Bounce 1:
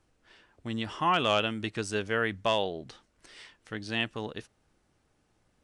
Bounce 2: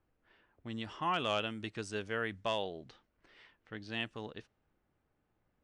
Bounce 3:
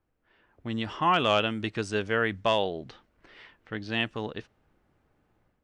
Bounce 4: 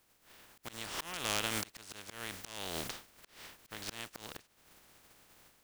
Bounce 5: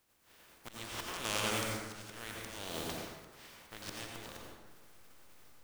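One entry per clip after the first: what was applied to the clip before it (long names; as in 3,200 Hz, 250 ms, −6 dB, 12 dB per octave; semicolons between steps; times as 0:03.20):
low-pass that shuts in the quiet parts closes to 2,300 Hz, open at −26.5 dBFS; level −7.5 dB
automatic gain control gain up to 10 dB; high-shelf EQ 7,300 Hz −10 dB
compressing power law on the bin magnitudes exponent 0.26; downward compressor 10 to 1, threshold −34 dBFS, peak gain reduction 16 dB; volume swells 395 ms; level +6.5 dB
in parallel at −8.5 dB: slack as between gear wheels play −29 dBFS; on the sum: dense smooth reverb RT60 1.3 s, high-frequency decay 0.55×, pre-delay 75 ms, DRR −1.5 dB; level −4.5 dB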